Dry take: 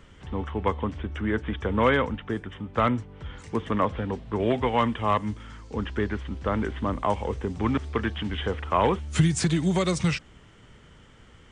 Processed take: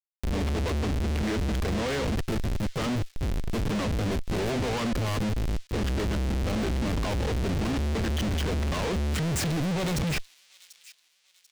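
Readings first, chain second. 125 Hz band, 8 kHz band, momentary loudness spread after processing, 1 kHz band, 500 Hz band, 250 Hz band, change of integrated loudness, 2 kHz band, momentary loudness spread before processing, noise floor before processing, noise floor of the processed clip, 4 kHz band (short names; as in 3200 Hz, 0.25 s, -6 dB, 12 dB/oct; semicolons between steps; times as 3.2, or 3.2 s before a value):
+1.0 dB, +1.5 dB, 3 LU, -8.0 dB, -4.0 dB, -2.0 dB, -2.0 dB, -2.5 dB, 9 LU, -52 dBFS, -65 dBFS, +1.5 dB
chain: in parallel at +1 dB: limiter -19 dBFS, peak gain reduction 9.5 dB; on the sum: Schmitt trigger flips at -29 dBFS; high shelf 2500 Hz -9.5 dB; hard clip -31.5 dBFS, distortion -12 dB; upward compressor, threshold -41 dBFS; bell 1100 Hz -5.5 dB 1.4 oct; on a send: thin delay 0.74 s, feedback 38%, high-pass 3300 Hz, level -14.5 dB; on the sum: gain +5.5 dB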